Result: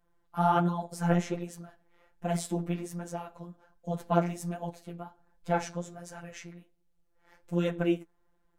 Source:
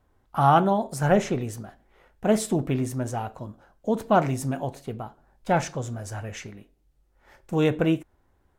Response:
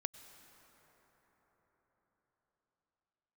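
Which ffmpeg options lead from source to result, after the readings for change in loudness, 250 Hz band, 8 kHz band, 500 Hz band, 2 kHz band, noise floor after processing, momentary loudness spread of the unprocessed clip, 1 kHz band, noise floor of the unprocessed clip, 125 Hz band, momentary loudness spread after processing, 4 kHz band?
-6.0 dB, -6.0 dB, -7.0 dB, -7.5 dB, -7.5 dB, -71 dBFS, 18 LU, -7.5 dB, -66 dBFS, -5.5 dB, 18 LU, -7.0 dB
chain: -af "afftfilt=real='hypot(re,im)*cos(PI*b)':imag='0':win_size=1024:overlap=0.75,bandreject=f=417.8:t=h:w=4,bandreject=f=835.6:t=h:w=4,bandreject=f=1253.4:t=h:w=4,flanger=delay=3.6:depth=8.9:regen=24:speed=1.3:shape=triangular"

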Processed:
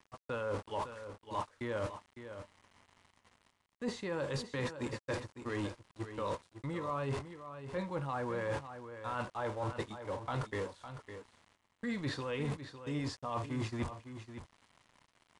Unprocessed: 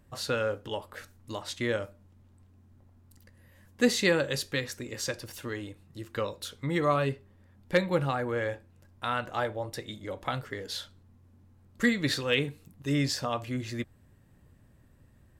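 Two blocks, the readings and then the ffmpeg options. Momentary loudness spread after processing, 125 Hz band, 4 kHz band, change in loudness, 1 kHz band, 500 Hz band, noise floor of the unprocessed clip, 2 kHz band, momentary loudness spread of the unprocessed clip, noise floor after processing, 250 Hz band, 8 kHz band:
11 LU, -5.0 dB, -13.5 dB, -8.5 dB, -4.5 dB, -7.5 dB, -60 dBFS, -11.0 dB, 13 LU, -78 dBFS, -8.0 dB, -14.5 dB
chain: -af "aeval=exprs='val(0)+0.5*0.0133*sgn(val(0))':c=same,deesser=1,agate=range=0.112:threshold=0.0178:ratio=16:detection=peak,equalizer=f=1000:w=3.1:g=10,areverse,acompressor=threshold=0.0126:ratio=16,areverse,aeval=exprs='val(0)*gte(abs(val(0)),0.00119)':c=same,aecho=1:1:556:0.299,aresample=22050,aresample=44100,volume=1.58"

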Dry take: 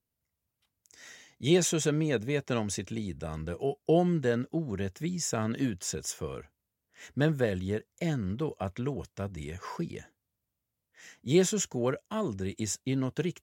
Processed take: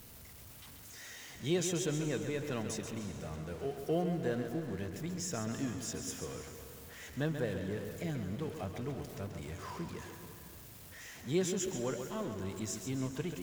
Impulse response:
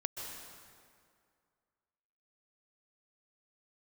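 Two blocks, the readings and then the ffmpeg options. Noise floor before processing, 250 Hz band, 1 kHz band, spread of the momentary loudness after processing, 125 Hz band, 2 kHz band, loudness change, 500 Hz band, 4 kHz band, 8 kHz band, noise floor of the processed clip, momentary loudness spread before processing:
under -85 dBFS, -6.5 dB, -6.0 dB, 15 LU, -6.5 dB, -6.0 dB, -7.0 dB, -7.0 dB, -6.0 dB, -6.0 dB, -53 dBFS, 13 LU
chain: -filter_complex "[0:a]aeval=exprs='val(0)+0.5*0.0133*sgn(val(0))':c=same,asplit=2[s0][s1];[1:a]atrim=start_sample=2205,adelay=135[s2];[s1][s2]afir=irnorm=-1:irlink=0,volume=0.473[s3];[s0][s3]amix=inputs=2:normalize=0,volume=0.355"

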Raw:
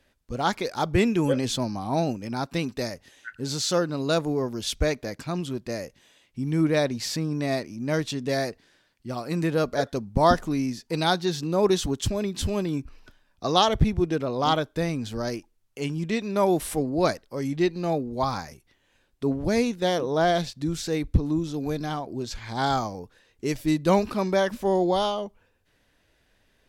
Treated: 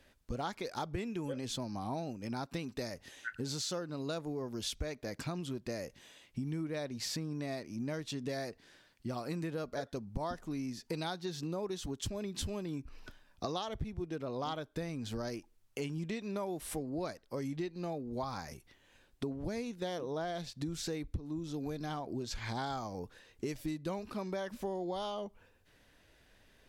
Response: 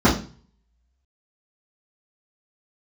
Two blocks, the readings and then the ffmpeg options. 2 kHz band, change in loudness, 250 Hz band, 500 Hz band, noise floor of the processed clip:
-13.0 dB, -13.5 dB, -12.5 dB, -14.0 dB, -67 dBFS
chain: -af "acompressor=threshold=0.0158:ratio=10,volume=1.12"

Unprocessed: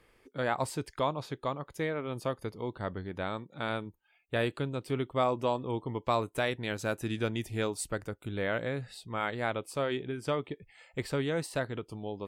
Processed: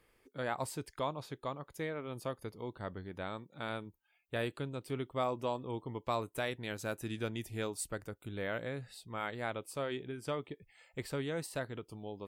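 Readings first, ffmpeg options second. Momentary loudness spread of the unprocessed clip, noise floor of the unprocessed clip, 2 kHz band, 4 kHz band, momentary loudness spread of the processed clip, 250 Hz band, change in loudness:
7 LU, -68 dBFS, -6.0 dB, -5.5 dB, 7 LU, -6.0 dB, -6.0 dB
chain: -af "highshelf=f=11000:g=10.5,volume=0.501"

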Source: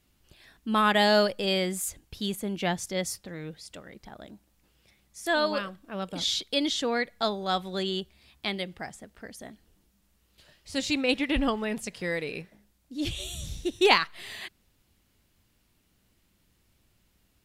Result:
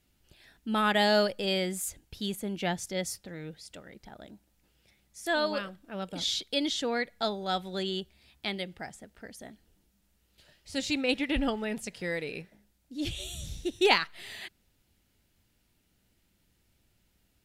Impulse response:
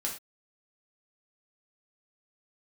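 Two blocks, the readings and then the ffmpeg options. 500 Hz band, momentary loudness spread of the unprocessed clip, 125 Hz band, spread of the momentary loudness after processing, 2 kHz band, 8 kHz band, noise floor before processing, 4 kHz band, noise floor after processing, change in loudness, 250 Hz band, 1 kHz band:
-2.5 dB, 21 LU, -2.5 dB, 21 LU, -2.5 dB, -2.5 dB, -69 dBFS, -2.5 dB, -72 dBFS, -2.5 dB, -2.5 dB, -3.5 dB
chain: -af "bandreject=f=1100:w=7.4,volume=0.75"

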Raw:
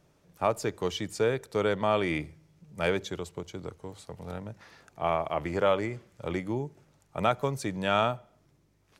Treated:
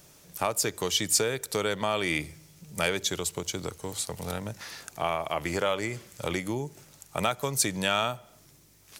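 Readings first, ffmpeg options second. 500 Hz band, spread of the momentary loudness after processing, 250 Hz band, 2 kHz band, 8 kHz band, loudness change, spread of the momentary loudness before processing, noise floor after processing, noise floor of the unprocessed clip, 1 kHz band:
-2.0 dB, 13 LU, -0.5 dB, +3.5 dB, +17.0 dB, +1.0 dB, 16 LU, -57 dBFS, -67 dBFS, -1.0 dB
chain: -af "acompressor=threshold=0.0178:ratio=2.5,crystalizer=i=5.5:c=0,volume=1.78"

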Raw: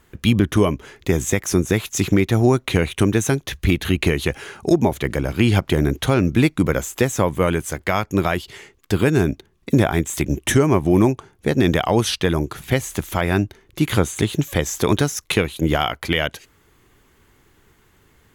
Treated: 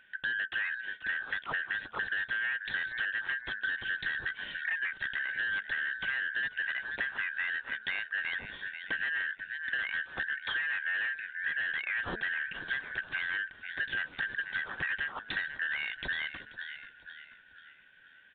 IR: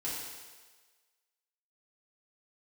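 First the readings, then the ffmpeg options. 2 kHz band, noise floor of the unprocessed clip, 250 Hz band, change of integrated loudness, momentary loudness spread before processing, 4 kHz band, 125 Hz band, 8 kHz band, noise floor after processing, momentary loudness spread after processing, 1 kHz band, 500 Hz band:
-1.0 dB, -58 dBFS, -36.0 dB, -13.5 dB, 6 LU, -12.5 dB, -37.0 dB, under -40 dB, -58 dBFS, 5 LU, -19.0 dB, -32.5 dB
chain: -filter_complex "[0:a]afftfilt=real='real(if(lt(b,272),68*(eq(floor(b/68),0)*3+eq(floor(b/68),1)*0+eq(floor(b/68),2)*1+eq(floor(b/68),3)*2)+mod(b,68),b),0)':imag='imag(if(lt(b,272),68*(eq(floor(b/68),0)*3+eq(floor(b/68),1)*0+eq(floor(b/68),2)*1+eq(floor(b/68),3)*2)+mod(b,68),b),0)':win_size=2048:overlap=0.75,lowpass=f=1500:p=1,bandreject=f=220:t=h:w=4,bandreject=f=440:t=h:w=4,bandreject=f=660:t=h:w=4,asplit=5[s0][s1][s2][s3][s4];[s1]adelay=485,afreqshift=-42,volume=0.126[s5];[s2]adelay=970,afreqshift=-84,volume=0.0569[s6];[s3]adelay=1455,afreqshift=-126,volume=0.0254[s7];[s4]adelay=1940,afreqshift=-168,volume=0.0115[s8];[s0][s5][s6][s7][s8]amix=inputs=5:normalize=0,aresample=8000,asoftclip=type=tanh:threshold=0.1,aresample=44100,acompressor=threshold=0.0251:ratio=4"

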